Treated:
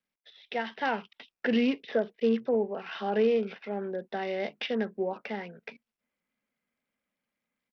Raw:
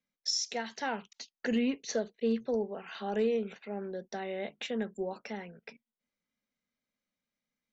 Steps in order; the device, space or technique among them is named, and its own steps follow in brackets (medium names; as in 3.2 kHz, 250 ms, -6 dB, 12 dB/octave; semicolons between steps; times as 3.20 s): Bluetooth headset (high-pass 180 Hz 6 dB/octave; level rider gain up to 5.5 dB; resampled via 8 kHz; SBC 64 kbps 44.1 kHz)